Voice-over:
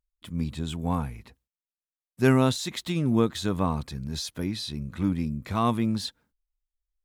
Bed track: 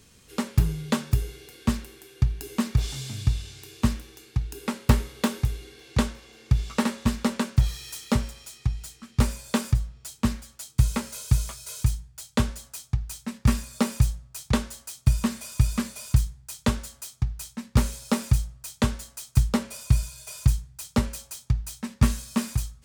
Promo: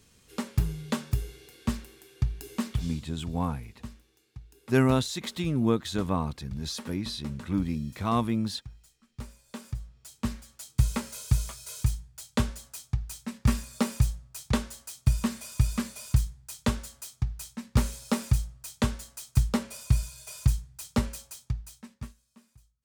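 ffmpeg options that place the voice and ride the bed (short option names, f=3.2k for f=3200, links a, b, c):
-filter_complex "[0:a]adelay=2500,volume=-2dB[a];[1:a]volume=11dB,afade=t=out:st=2.65:d=0.37:silence=0.199526,afade=t=in:st=9.47:d=1.33:silence=0.158489,afade=t=out:st=21.09:d=1.05:silence=0.0375837[b];[a][b]amix=inputs=2:normalize=0"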